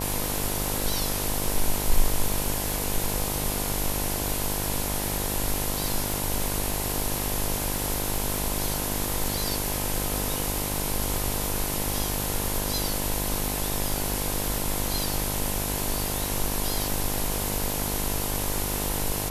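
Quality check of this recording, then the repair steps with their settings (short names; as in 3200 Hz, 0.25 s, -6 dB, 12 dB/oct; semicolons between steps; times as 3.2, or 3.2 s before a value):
buzz 50 Hz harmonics 21 -32 dBFS
crackle 27/s -32 dBFS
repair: de-click; de-hum 50 Hz, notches 21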